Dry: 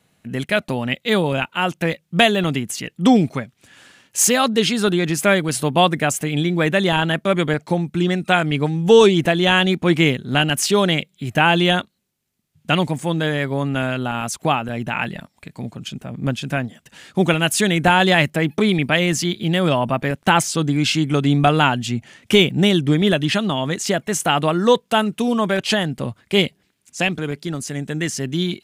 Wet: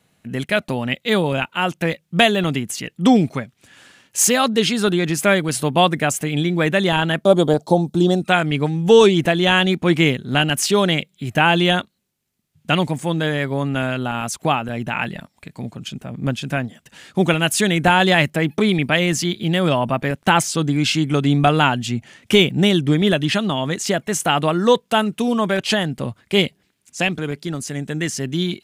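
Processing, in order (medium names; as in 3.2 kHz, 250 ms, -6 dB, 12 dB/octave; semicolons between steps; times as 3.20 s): 7.25–8.22 s: FFT filter 120 Hz 0 dB, 770 Hz +8 dB, 2.2 kHz -18 dB, 3.6 kHz +4 dB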